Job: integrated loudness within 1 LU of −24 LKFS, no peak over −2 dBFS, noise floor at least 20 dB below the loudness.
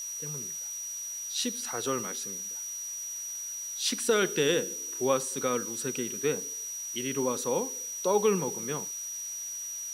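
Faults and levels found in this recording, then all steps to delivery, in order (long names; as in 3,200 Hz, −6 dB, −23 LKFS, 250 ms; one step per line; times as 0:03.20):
interfering tone 5,800 Hz; level of the tone −35 dBFS; background noise floor −38 dBFS; target noise floor −51 dBFS; integrated loudness −30.5 LKFS; sample peak −13.5 dBFS; target loudness −24.0 LKFS
→ notch filter 5,800 Hz, Q 30
noise reduction from a noise print 13 dB
level +6.5 dB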